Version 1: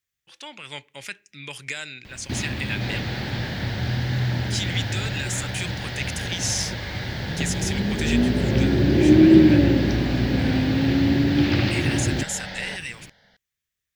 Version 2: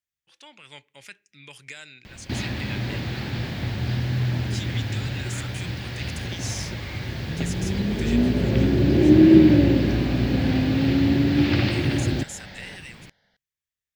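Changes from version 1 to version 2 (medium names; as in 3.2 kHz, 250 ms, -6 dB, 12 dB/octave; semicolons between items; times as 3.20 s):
speech -8.5 dB; second sound -9.0 dB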